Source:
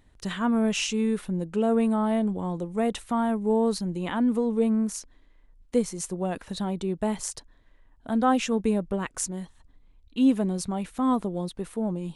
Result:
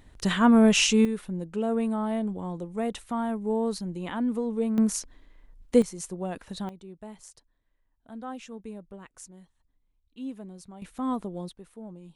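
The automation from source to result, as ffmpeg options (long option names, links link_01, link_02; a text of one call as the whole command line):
ffmpeg -i in.wav -af "asetnsamples=nb_out_samples=441:pad=0,asendcmd='1.05 volume volume -4dB;4.78 volume volume 4dB;5.82 volume volume -4dB;6.69 volume volume -16dB;10.82 volume volume -5.5dB;11.53 volume volume -14dB',volume=6dB" out.wav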